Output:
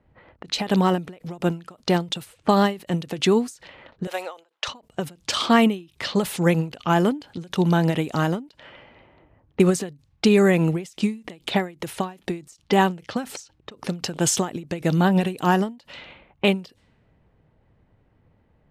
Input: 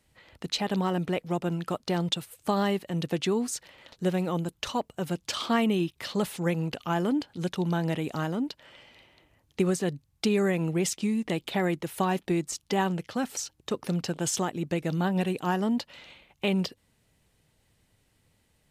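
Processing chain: 4.07–4.68 s: high-pass 540 Hz 24 dB/octave; level-controlled noise filter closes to 1.2 kHz, open at -27.5 dBFS; endings held to a fixed fall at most 180 dB/s; trim +8.5 dB

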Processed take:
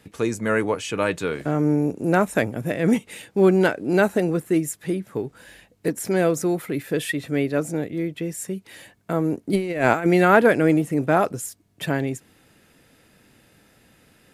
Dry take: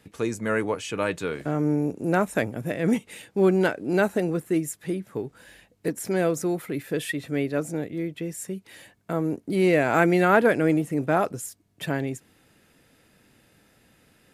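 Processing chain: 9.53–10.06 s: compressor with a negative ratio -24 dBFS, ratio -0.5; trim +3.5 dB

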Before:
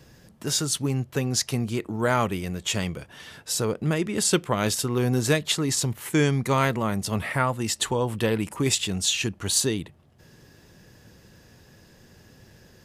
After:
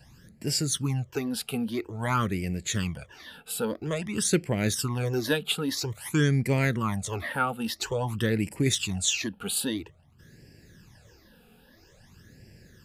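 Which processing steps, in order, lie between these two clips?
phase shifter stages 12, 0.5 Hz, lowest notch 100–1200 Hz

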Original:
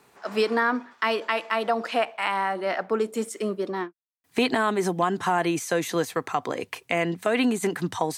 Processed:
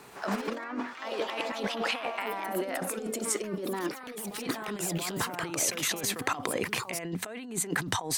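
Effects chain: compressor with a negative ratio -35 dBFS, ratio -1; ever faster or slower copies 114 ms, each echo +3 st, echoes 3, each echo -6 dB

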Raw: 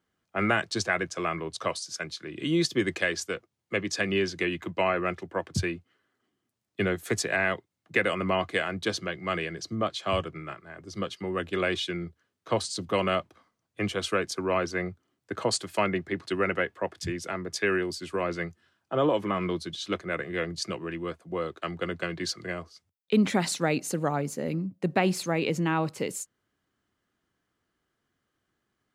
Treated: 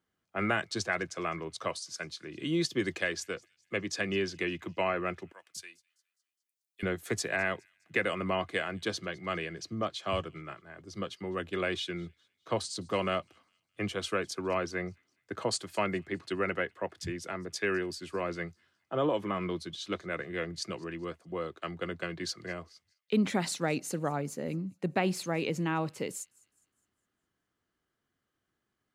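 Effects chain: 5.32–6.83 s: differentiator; feedback echo behind a high-pass 206 ms, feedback 43%, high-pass 3.3 kHz, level -23.5 dB; trim -4.5 dB

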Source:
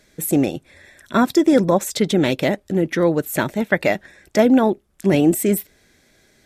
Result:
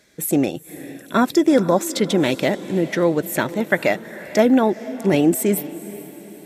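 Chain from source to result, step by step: high-pass 140 Hz 6 dB/octave; echo that smears into a reverb 459 ms, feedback 48%, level -16 dB

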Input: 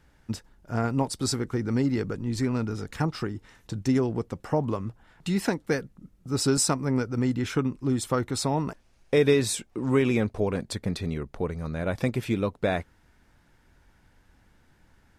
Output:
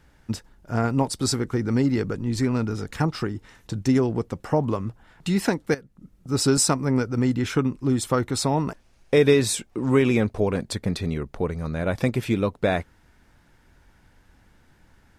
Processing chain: 5.74–6.29 s: compression 4:1, threshold -43 dBFS, peak gain reduction 14.5 dB; trim +3.5 dB

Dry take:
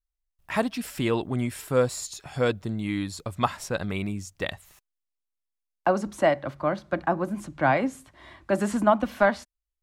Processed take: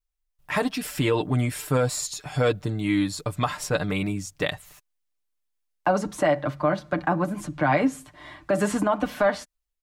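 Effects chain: comb 6.7 ms, depth 62%; peak limiter -15.5 dBFS, peak gain reduction 9.5 dB; level rider gain up to 3.5 dB

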